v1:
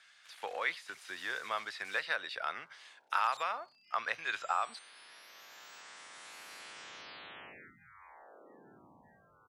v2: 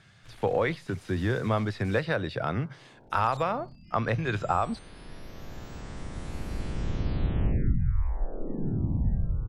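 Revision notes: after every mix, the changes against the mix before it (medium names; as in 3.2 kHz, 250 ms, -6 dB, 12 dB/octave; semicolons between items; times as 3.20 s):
master: remove high-pass 1.3 kHz 12 dB/octave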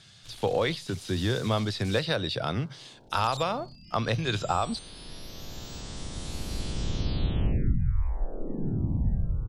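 master: add resonant high shelf 2.7 kHz +9.5 dB, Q 1.5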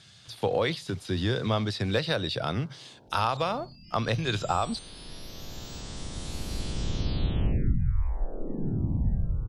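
first sound: add band-pass filter 840 Hz, Q 0.53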